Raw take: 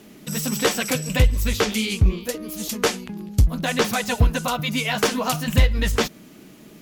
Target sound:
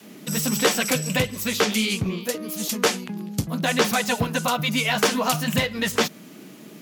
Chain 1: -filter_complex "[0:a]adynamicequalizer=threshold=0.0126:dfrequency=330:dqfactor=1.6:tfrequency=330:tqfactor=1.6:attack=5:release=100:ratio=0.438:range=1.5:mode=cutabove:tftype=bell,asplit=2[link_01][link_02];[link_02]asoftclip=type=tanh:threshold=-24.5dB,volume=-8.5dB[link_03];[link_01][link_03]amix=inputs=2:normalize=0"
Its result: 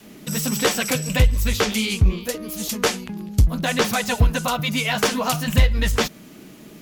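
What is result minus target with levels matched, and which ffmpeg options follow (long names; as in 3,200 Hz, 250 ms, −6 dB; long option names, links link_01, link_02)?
125 Hz band +5.5 dB
-filter_complex "[0:a]adynamicequalizer=threshold=0.0126:dfrequency=330:dqfactor=1.6:tfrequency=330:tqfactor=1.6:attack=5:release=100:ratio=0.438:range=1.5:mode=cutabove:tftype=bell,highpass=frequency=140:width=0.5412,highpass=frequency=140:width=1.3066,asplit=2[link_01][link_02];[link_02]asoftclip=type=tanh:threshold=-24.5dB,volume=-8.5dB[link_03];[link_01][link_03]amix=inputs=2:normalize=0"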